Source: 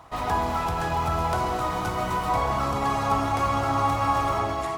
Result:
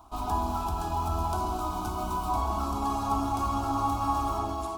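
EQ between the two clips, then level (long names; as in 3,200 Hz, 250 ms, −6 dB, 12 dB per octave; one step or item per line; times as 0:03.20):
low-shelf EQ 210 Hz +8.5 dB
high-shelf EQ 11,000 Hz +7 dB
phaser with its sweep stopped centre 510 Hz, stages 6
−4.0 dB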